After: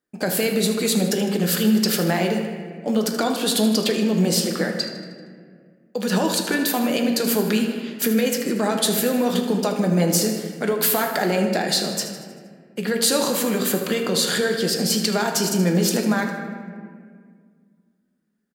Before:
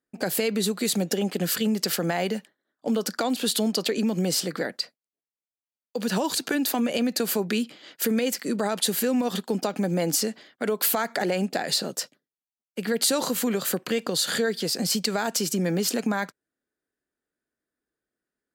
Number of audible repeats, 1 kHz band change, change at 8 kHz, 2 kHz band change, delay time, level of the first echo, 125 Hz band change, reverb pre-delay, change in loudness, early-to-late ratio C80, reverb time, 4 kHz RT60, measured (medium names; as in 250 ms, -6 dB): 1, +4.5 dB, +3.5 dB, +5.0 dB, 78 ms, -12.0 dB, +7.0 dB, 5 ms, +4.5 dB, 6.5 dB, 2.0 s, 1.0 s